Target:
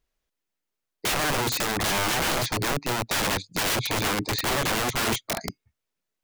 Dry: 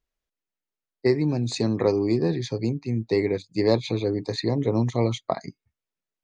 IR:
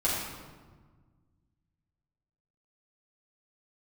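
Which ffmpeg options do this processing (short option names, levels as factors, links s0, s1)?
-af "acontrast=33,aeval=exprs='(mod(10*val(0)+1,2)-1)/10':c=same"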